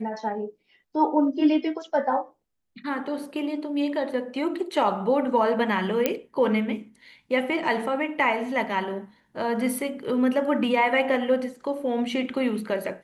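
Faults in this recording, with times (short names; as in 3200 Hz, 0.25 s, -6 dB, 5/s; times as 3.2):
6.06 pop -7 dBFS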